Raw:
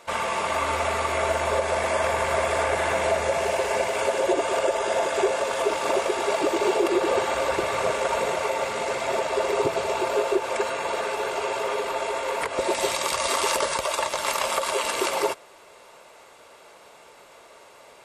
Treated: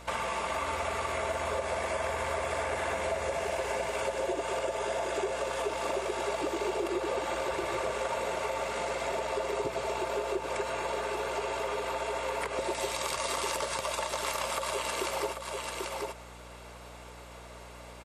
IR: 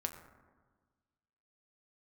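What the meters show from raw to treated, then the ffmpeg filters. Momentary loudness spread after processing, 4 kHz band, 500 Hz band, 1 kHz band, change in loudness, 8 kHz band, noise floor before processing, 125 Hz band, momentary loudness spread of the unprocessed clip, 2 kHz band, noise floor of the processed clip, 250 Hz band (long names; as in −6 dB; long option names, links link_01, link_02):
6 LU, −7.5 dB, −8.0 dB, −7.5 dB, −8.0 dB, −7.5 dB, −50 dBFS, −4.5 dB, 4 LU, −7.5 dB, −47 dBFS, −8.0 dB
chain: -af "aecho=1:1:790:0.316,acompressor=threshold=-32dB:ratio=3,aeval=exprs='val(0)+0.00316*(sin(2*PI*60*n/s)+sin(2*PI*2*60*n/s)/2+sin(2*PI*3*60*n/s)/3+sin(2*PI*4*60*n/s)/4+sin(2*PI*5*60*n/s)/5)':channel_layout=same"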